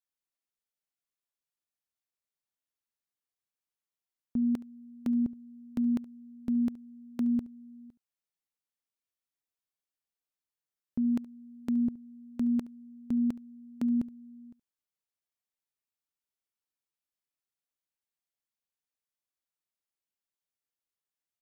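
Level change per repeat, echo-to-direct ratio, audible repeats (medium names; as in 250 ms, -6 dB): no regular repeats, -20.0 dB, 1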